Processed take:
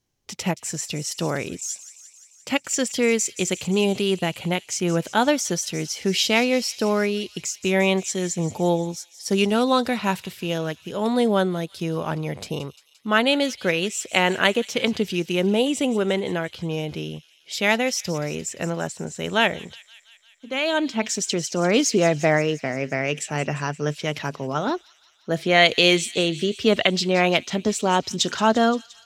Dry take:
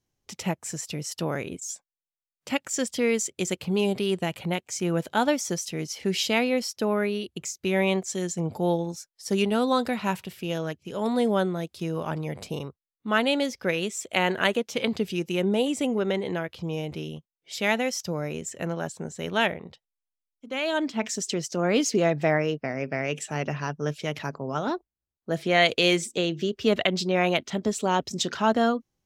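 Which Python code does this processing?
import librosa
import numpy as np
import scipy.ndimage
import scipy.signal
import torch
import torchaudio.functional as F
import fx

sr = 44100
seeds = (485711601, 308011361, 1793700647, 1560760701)

p1 = fx.peak_eq(x, sr, hz=4200.0, db=2.5, octaves=2.2)
p2 = p1 + fx.echo_wet_highpass(p1, sr, ms=174, feedback_pct=68, hz=3600.0, wet_db=-13.0, dry=0)
y = p2 * 10.0 ** (3.5 / 20.0)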